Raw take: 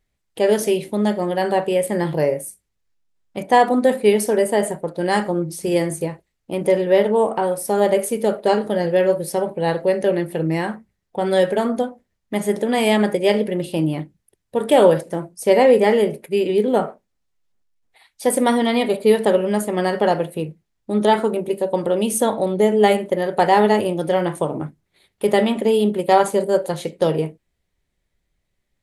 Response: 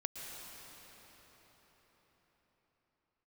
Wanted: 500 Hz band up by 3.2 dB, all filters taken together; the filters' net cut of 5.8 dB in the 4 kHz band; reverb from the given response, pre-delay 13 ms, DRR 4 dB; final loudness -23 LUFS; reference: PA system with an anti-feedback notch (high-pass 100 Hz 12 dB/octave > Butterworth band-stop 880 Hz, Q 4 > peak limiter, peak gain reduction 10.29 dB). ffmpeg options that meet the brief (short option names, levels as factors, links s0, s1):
-filter_complex "[0:a]equalizer=f=500:t=o:g=4,equalizer=f=4000:t=o:g=-8.5,asplit=2[s0][s1];[1:a]atrim=start_sample=2205,adelay=13[s2];[s1][s2]afir=irnorm=-1:irlink=0,volume=0.596[s3];[s0][s3]amix=inputs=2:normalize=0,highpass=100,asuperstop=centerf=880:order=8:qfactor=4,volume=0.596,alimiter=limit=0.237:level=0:latency=1"